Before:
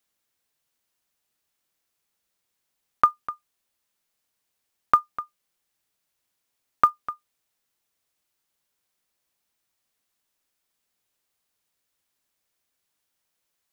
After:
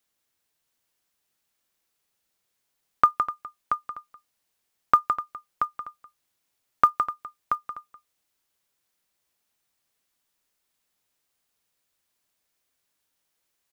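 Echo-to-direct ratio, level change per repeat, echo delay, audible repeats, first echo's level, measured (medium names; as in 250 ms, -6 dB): -5.0 dB, no regular repeats, 163 ms, 3, -7.5 dB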